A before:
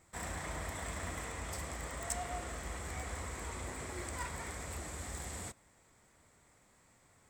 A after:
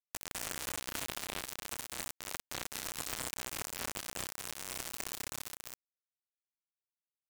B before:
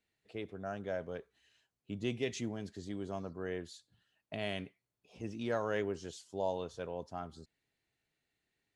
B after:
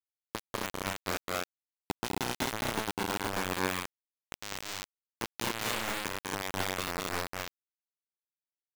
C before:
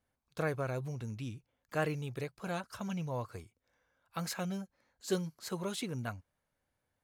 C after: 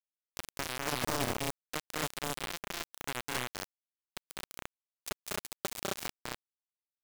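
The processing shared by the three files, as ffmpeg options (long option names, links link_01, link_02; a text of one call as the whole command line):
ffmpeg -i in.wav -filter_complex "[0:a]equalizer=frequency=290:width_type=o:width=0.31:gain=12.5,acompressor=threshold=-36dB:ratio=12,alimiter=level_in=10.5dB:limit=-24dB:level=0:latency=1:release=428,volume=-10.5dB,acrusher=bits=5:mix=0:aa=0.000001,asplit=2[link_01][link_02];[link_02]aecho=0:1:201.2|233.2|265.3:0.794|0.708|0.891[link_03];[link_01][link_03]amix=inputs=2:normalize=0,volume=9dB" out.wav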